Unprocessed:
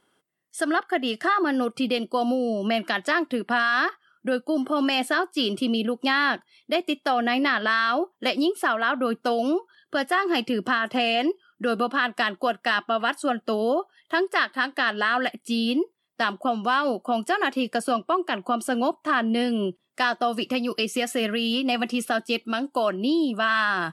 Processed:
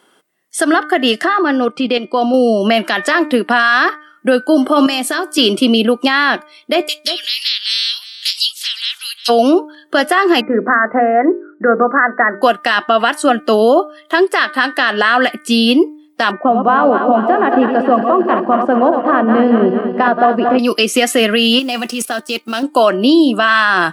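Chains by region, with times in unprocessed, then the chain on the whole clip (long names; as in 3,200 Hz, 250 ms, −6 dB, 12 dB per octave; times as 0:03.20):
0:01.24–0:02.34: high-frequency loss of the air 91 metres + output level in coarse steps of 9 dB
0:04.86–0:05.38: bass and treble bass +11 dB, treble +9 dB + downward compressor 2.5 to 1, threshold −33 dBFS
0:06.87–0:09.28: ceiling on every frequency bin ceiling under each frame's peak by 24 dB + four-pole ladder high-pass 3,000 Hz, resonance 30% + single-tap delay 355 ms −16.5 dB
0:10.41–0:12.42: Chebyshev low-pass with heavy ripple 2,000 Hz, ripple 3 dB + mains-hum notches 50/100/150/200/250/300/350/400/450/500 Hz
0:16.31–0:20.59: feedback delay that plays each chunk backwards 113 ms, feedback 74%, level −7 dB + low-pass filter 1,100 Hz
0:21.59–0:22.63: mu-law and A-law mismatch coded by A + output level in coarse steps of 11 dB + bass and treble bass 0 dB, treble +7 dB
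whole clip: high-pass filter 220 Hz; hum removal 302.1 Hz, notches 8; boost into a limiter +15.5 dB; level −1 dB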